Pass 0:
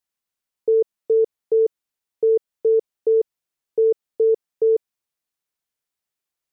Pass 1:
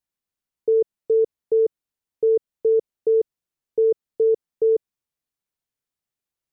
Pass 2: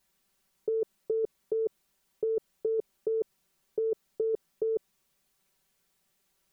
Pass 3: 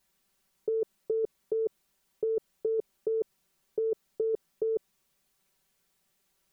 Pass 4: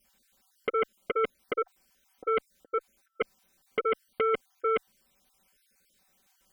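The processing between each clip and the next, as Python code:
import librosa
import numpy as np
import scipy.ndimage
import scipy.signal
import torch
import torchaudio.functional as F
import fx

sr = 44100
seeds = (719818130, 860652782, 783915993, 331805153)

y1 = fx.low_shelf(x, sr, hz=370.0, db=8.5)
y1 = y1 * librosa.db_to_amplitude(-4.5)
y2 = y1 + 0.99 * np.pad(y1, (int(5.2 * sr / 1000.0), 0))[:len(y1)]
y2 = fx.over_compress(y2, sr, threshold_db=-28.0, ratio=-1.0)
y3 = y2
y4 = fx.spec_dropout(y3, sr, seeds[0], share_pct=38)
y4 = fx.cheby_harmonics(y4, sr, harmonics=(2, 4, 7), levels_db=(-22, -29, -7), full_scale_db=-20.0)
y4 = y4 + 0.5 * np.pad(y4, (int(3.9 * sr / 1000.0), 0))[:len(y4)]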